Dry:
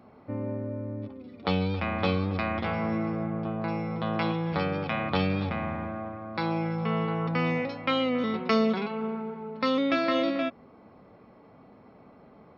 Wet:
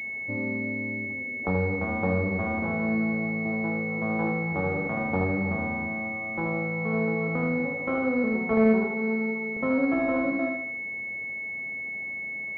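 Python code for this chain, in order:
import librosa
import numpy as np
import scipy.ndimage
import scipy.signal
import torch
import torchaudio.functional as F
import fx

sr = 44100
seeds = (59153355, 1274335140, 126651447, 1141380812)

p1 = x + fx.echo_feedback(x, sr, ms=77, feedback_pct=45, wet_db=-4.0, dry=0)
p2 = fx.buffer_glitch(p1, sr, at_s=(9.52,), block=2048, repeats=1)
y = fx.pwm(p2, sr, carrier_hz=2200.0)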